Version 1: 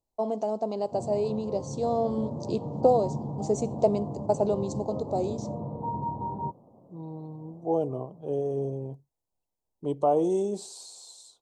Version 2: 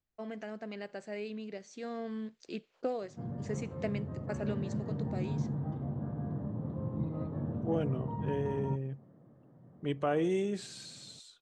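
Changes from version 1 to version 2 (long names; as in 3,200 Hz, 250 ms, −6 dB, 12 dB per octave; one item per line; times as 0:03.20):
first voice −6.5 dB
background: entry +2.25 s
master: remove drawn EQ curve 180 Hz 0 dB, 950 Hz +12 dB, 1,700 Hz −25 dB, 4,100 Hz 0 dB, 8,700 Hz +8 dB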